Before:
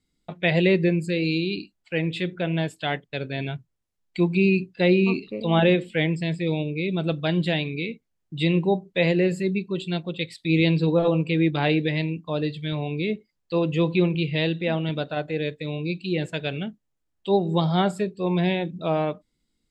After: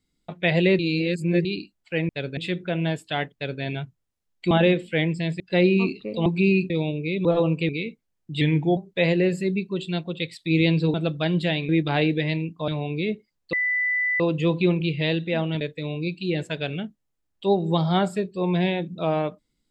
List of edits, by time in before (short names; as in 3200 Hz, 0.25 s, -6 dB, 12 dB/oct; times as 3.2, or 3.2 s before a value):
0.79–1.45 reverse
3.06–3.34 copy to 2.09
4.23–4.67 swap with 5.53–6.42
6.97–7.72 swap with 10.93–11.37
8.44–8.76 speed 89%
12.36–12.69 cut
13.54 add tone 1990 Hz -20.5 dBFS 0.67 s
14.95–15.44 cut